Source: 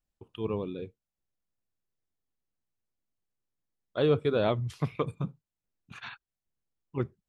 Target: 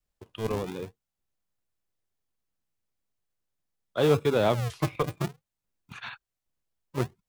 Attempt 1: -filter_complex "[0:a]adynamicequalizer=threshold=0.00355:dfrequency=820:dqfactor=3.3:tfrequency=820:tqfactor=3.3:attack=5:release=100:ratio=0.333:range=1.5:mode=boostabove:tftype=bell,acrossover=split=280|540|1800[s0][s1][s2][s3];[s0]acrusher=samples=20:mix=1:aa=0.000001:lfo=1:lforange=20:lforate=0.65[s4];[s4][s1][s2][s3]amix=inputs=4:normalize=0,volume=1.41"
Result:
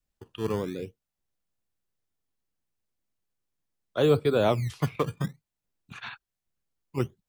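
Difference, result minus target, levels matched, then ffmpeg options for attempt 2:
decimation with a swept rate: distortion -12 dB
-filter_complex "[0:a]adynamicequalizer=threshold=0.00355:dfrequency=820:dqfactor=3.3:tfrequency=820:tqfactor=3.3:attack=5:release=100:ratio=0.333:range=1.5:mode=boostabove:tftype=bell,acrossover=split=280|540|1800[s0][s1][s2][s3];[s0]acrusher=samples=67:mix=1:aa=0.000001:lfo=1:lforange=67:lforate=0.65[s4];[s4][s1][s2][s3]amix=inputs=4:normalize=0,volume=1.41"

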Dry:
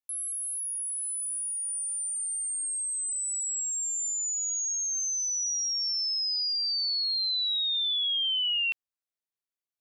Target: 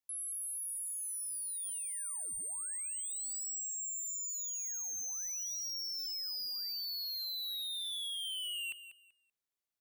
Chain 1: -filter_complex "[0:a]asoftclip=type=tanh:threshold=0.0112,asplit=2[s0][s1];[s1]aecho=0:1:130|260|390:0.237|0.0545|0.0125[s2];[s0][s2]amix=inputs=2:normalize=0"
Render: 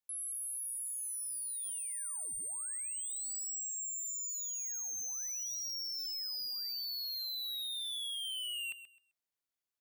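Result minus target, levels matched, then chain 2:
echo 62 ms early
-filter_complex "[0:a]asoftclip=type=tanh:threshold=0.0112,asplit=2[s0][s1];[s1]aecho=0:1:192|384|576:0.237|0.0545|0.0125[s2];[s0][s2]amix=inputs=2:normalize=0"

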